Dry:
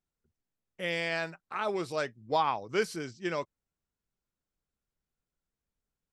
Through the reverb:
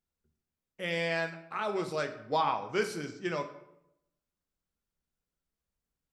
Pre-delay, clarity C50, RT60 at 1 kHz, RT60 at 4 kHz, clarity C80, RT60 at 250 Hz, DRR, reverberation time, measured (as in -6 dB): 6 ms, 11.0 dB, 0.75 s, 0.55 s, 13.5 dB, 0.90 s, 6.0 dB, 0.85 s